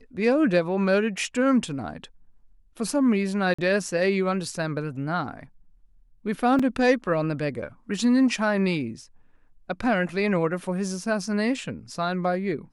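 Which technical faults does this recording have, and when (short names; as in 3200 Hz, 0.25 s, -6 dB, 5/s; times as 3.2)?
3.54–3.58 gap 45 ms
6.59 gap 4.7 ms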